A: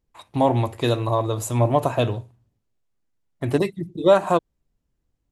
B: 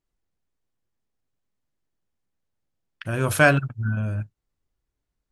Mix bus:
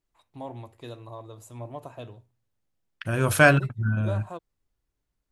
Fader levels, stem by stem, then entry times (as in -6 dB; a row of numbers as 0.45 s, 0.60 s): -19.5 dB, 0.0 dB; 0.00 s, 0.00 s